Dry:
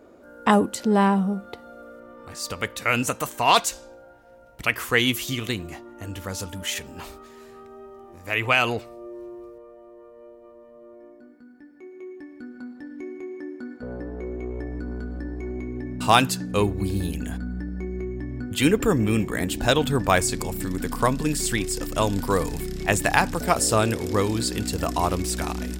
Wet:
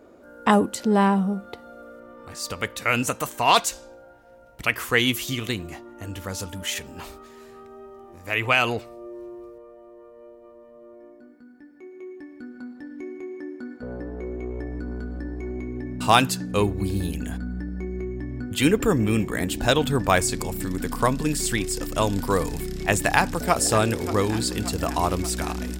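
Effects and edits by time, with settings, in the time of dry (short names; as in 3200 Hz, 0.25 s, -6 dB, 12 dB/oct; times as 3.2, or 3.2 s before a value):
23.07–23.56 echo throw 0.58 s, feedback 65%, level -13.5 dB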